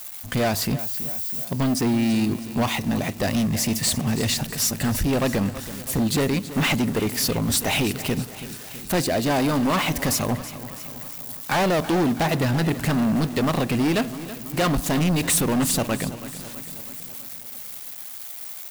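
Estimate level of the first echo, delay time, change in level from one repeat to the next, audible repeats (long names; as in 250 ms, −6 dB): −14.5 dB, 327 ms, −4.5 dB, 5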